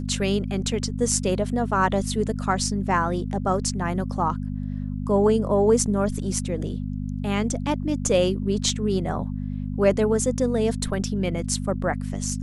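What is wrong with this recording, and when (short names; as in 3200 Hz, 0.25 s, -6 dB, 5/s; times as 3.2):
hum 50 Hz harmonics 5 -29 dBFS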